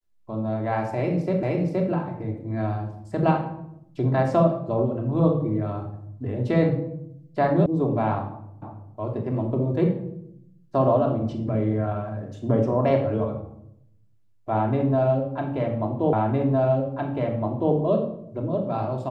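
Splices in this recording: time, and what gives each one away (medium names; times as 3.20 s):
1.43 s: repeat of the last 0.47 s
7.66 s: sound stops dead
8.62 s: repeat of the last 0.33 s
16.13 s: repeat of the last 1.61 s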